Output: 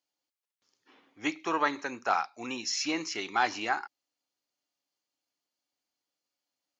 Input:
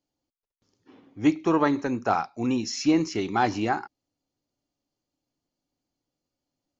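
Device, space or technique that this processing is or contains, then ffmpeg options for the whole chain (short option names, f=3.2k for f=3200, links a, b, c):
filter by subtraction: -filter_complex "[0:a]asplit=2[a][b];[b]lowpass=1.9k,volume=-1[c];[a][c]amix=inputs=2:normalize=0"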